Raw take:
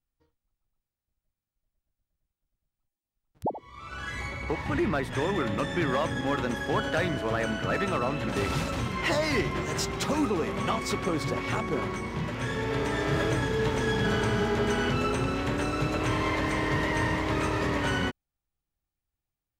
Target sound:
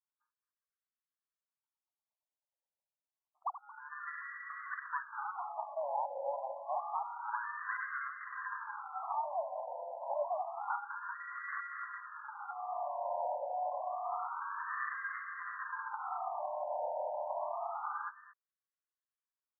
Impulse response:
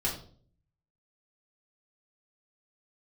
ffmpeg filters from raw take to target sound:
-af "aecho=1:1:222:0.133,aeval=exprs='val(0)*sin(2*PI*290*n/s)':c=same,afftfilt=real='re*between(b*sr/1024,720*pow(1500/720,0.5+0.5*sin(2*PI*0.28*pts/sr))/1.41,720*pow(1500/720,0.5+0.5*sin(2*PI*0.28*pts/sr))*1.41)':imag='im*between(b*sr/1024,720*pow(1500/720,0.5+0.5*sin(2*PI*0.28*pts/sr))/1.41,720*pow(1500/720,0.5+0.5*sin(2*PI*0.28*pts/sr))*1.41)':win_size=1024:overlap=0.75,volume=0.841"

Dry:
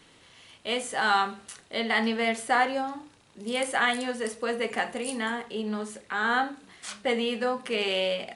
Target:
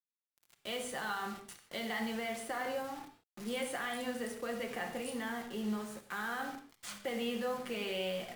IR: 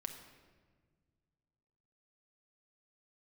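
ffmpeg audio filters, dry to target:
-filter_complex "[0:a]acrossover=split=180|1500[s0][s1][s2];[s0]acontrast=65[s3];[s3][s1][s2]amix=inputs=3:normalize=0,alimiter=limit=0.0841:level=0:latency=1,acrusher=bits=6:mix=0:aa=0.000001[s4];[1:a]atrim=start_sample=2205,atrim=end_sample=6615,asetrate=40572,aresample=44100[s5];[s4][s5]afir=irnorm=-1:irlink=0,adynamicequalizer=threshold=0.00398:dfrequency=2000:dqfactor=0.7:tfrequency=2000:tqfactor=0.7:attack=5:release=100:ratio=0.375:range=1.5:mode=cutabove:tftype=highshelf,volume=0.596"

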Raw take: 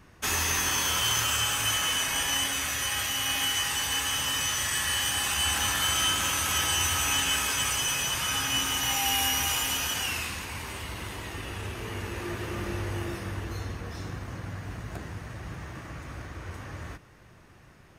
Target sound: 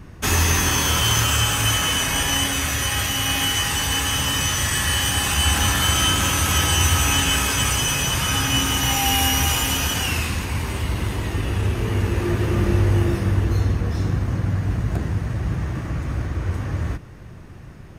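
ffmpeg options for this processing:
-af "lowshelf=f=390:g=11.5,volume=1.88"

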